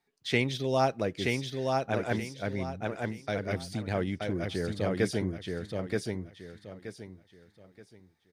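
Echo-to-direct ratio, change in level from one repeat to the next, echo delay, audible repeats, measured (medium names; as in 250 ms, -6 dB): -2.5 dB, -11.0 dB, 926 ms, 3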